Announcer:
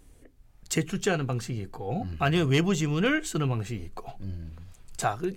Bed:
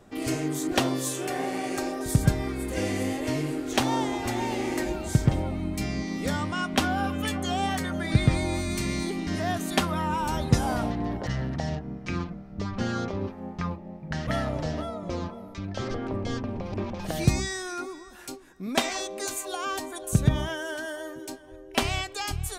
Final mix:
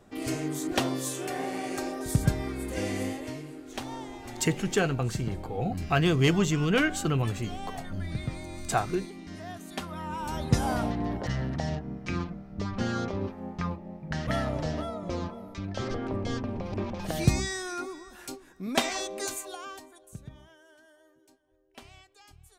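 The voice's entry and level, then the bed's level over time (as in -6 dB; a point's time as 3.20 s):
3.70 s, +0.5 dB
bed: 3.05 s -3 dB
3.44 s -12.5 dB
9.73 s -12.5 dB
10.66 s -1 dB
19.26 s -1 dB
20.27 s -24 dB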